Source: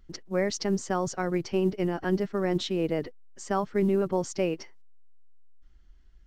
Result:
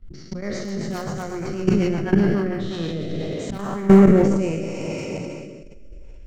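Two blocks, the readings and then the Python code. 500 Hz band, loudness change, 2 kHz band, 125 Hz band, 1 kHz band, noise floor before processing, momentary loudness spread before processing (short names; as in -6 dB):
+6.0 dB, +7.5 dB, +4.5 dB, +11.0 dB, +2.5 dB, -54 dBFS, 6 LU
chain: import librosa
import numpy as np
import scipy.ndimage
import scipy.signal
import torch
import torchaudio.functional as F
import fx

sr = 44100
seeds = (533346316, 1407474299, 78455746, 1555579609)

p1 = fx.spec_trails(x, sr, decay_s=2.45)
p2 = (np.mod(10.0 ** (12.5 / 20.0) * p1 + 1.0, 2.0) - 1.0) / 10.0 ** (12.5 / 20.0)
p3 = p1 + (p2 * 10.0 ** (-7.0 / 20.0))
p4 = fx.high_shelf(p3, sr, hz=4200.0, db=8.0)
p5 = fx.rev_gated(p4, sr, seeds[0], gate_ms=440, shape='flat', drr_db=5.0)
p6 = fx.auto_swell(p5, sr, attack_ms=467.0)
p7 = fx.level_steps(p6, sr, step_db=17)
p8 = fx.bass_treble(p7, sr, bass_db=10, treble_db=-12)
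p9 = fx.hum_notches(p8, sr, base_hz=60, count=4)
p10 = p9 + fx.echo_feedback(p9, sr, ms=355, feedback_pct=47, wet_db=-22.5, dry=0)
p11 = fx.rotary_switch(p10, sr, hz=8.0, then_hz=0.75, switch_at_s=2.12)
p12 = fx.sustainer(p11, sr, db_per_s=29.0)
y = p12 * 10.0 ** (5.0 / 20.0)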